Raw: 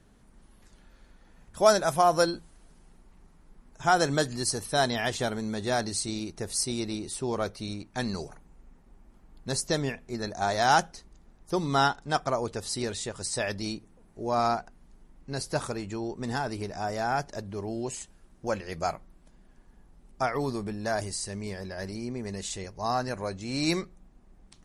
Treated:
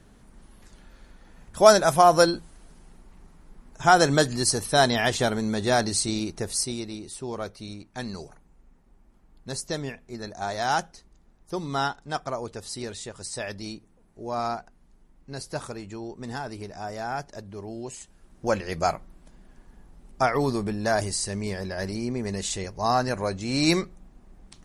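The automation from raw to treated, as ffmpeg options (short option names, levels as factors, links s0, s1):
-af "volume=5.01,afade=t=out:st=6.29:d=0.57:silence=0.375837,afade=t=in:st=17.99:d=0.51:silence=0.375837"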